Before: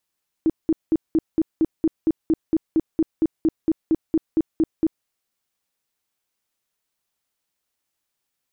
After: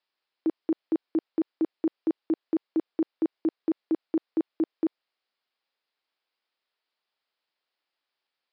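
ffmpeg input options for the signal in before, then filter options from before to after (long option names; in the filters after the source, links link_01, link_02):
-f lavfi -i "aevalsrc='0.2*sin(2*PI*321*mod(t,0.23))*lt(mod(t,0.23),12/321)':duration=4.6:sample_rate=44100"
-af "highpass=390,aresample=11025,aresample=44100"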